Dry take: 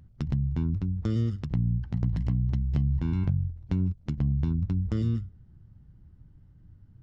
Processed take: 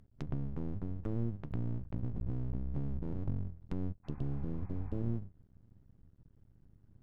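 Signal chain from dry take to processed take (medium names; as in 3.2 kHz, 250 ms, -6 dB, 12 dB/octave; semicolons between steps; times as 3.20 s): low-pass that closes with the level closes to 400 Hz, closed at -22.5 dBFS; half-wave rectifier; spectral replace 4.07–5.00 s, 720–2600 Hz after; trim -5 dB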